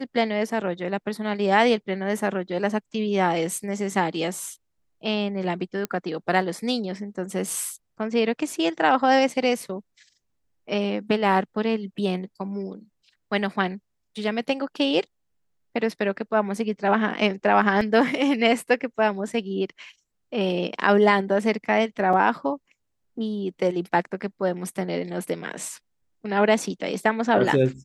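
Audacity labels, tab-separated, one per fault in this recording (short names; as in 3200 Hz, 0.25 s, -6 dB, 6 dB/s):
5.850000	5.850000	pop -12 dBFS
17.810000	17.810000	gap 2.4 ms
22.130000	22.130000	gap 3.8 ms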